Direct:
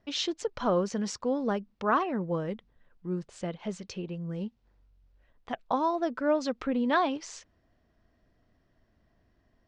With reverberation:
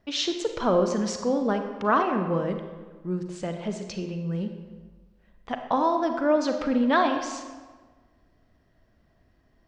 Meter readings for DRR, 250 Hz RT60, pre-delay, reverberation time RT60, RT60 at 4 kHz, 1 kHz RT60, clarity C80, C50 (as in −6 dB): 5.5 dB, 1.4 s, 34 ms, 1.4 s, 0.95 s, 1.4 s, 8.0 dB, 6.5 dB